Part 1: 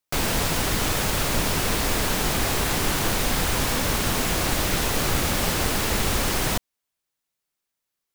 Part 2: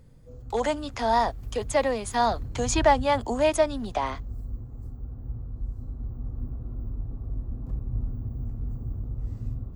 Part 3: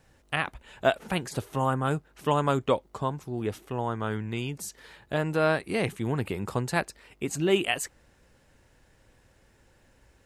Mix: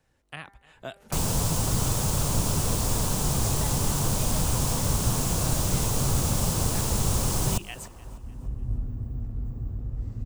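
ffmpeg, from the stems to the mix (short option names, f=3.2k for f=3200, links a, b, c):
-filter_complex "[0:a]equalizer=f=125:t=o:w=1:g=7,equalizer=f=500:t=o:w=1:g=5,equalizer=f=1k:t=o:w=1:g=8,equalizer=f=2k:t=o:w=1:g=-8,equalizer=f=4k:t=o:w=1:g=-5,equalizer=f=8k:t=o:w=1:g=5,equalizer=f=16k:t=o:w=1:g=-5,adelay=1000,volume=-1dB,asplit=2[a][b];[b]volume=-21.5dB[c];[1:a]adelay=750,volume=0dB[d];[2:a]bandreject=f=198.6:t=h:w=4,bandreject=f=397.2:t=h:w=4,bandreject=f=595.8:t=h:w=4,bandreject=f=794.4:t=h:w=4,bandreject=f=993:t=h:w=4,bandreject=f=1.1916k:t=h:w=4,bandreject=f=1.3902k:t=h:w=4,bandreject=f=1.5888k:t=h:w=4,bandreject=f=1.7874k:t=h:w=4,bandreject=f=1.986k:t=h:w=4,bandreject=f=2.1846k:t=h:w=4,volume=-8.5dB,asplit=3[e][f][g];[f]volume=-23.5dB[h];[g]apad=whole_len=463263[i];[d][i]sidechaincompress=threshold=-46dB:ratio=8:attack=16:release=691[j];[c][h]amix=inputs=2:normalize=0,aecho=0:1:300|600|900|1200|1500|1800:1|0.41|0.168|0.0689|0.0283|0.0116[k];[a][j][e][k]amix=inputs=4:normalize=0,acrossover=split=210|3000[l][m][n];[m]acompressor=threshold=-39dB:ratio=2.5[o];[l][o][n]amix=inputs=3:normalize=0"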